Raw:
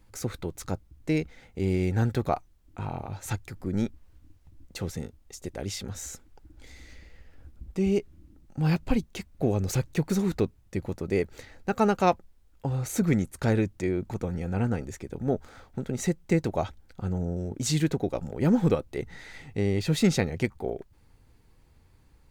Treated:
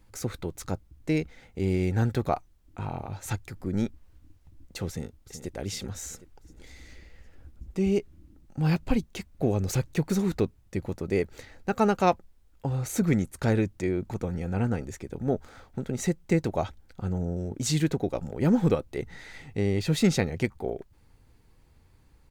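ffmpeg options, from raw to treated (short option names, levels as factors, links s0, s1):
-filter_complex "[0:a]asplit=2[s0][s1];[s1]afade=t=in:st=4.88:d=0.01,afade=t=out:st=5.53:d=0.01,aecho=0:1:380|760|1140|1520|1900|2280:0.266073|0.14634|0.0804869|0.0442678|0.0243473|0.013391[s2];[s0][s2]amix=inputs=2:normalize=0"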